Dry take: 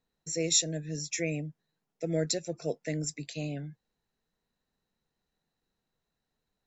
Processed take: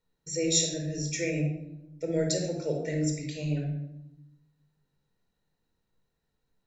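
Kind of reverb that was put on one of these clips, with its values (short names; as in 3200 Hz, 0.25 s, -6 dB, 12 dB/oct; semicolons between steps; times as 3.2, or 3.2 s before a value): shoebox room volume 2800 m³, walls furnished, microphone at 4.6 m; gain -2.5 dB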